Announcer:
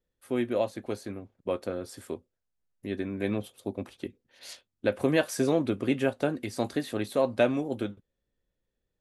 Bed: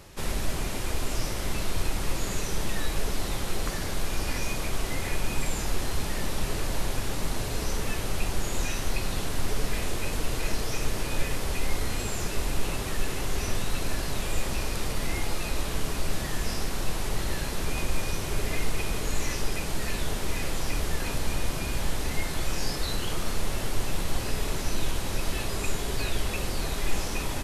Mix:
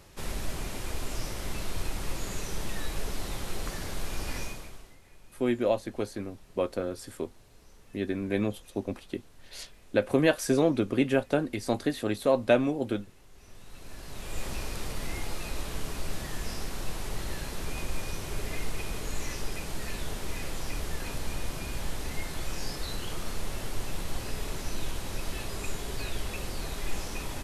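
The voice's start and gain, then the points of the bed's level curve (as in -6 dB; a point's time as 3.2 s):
5.10 s, +1.5 dB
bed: 4.41 s -5 dB
5 s -27 dB
13.31 s -27 dB
14.45 s -5.5 dB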